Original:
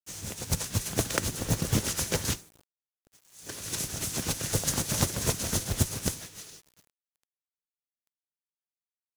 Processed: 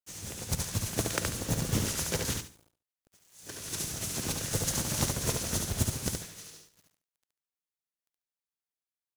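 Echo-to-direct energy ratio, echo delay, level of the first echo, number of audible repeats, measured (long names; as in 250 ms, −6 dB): −3.5 dB, 71 ms, −4.0 dB, 3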